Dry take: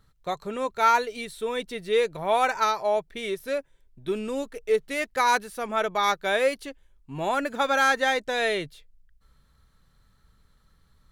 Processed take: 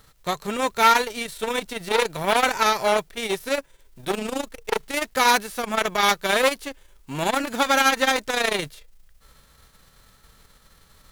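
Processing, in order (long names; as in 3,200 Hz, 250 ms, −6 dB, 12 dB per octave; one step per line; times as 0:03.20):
spectral envelope flattened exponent 0.6
saturating transformer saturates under 2,000 Hz
level +6.5 dB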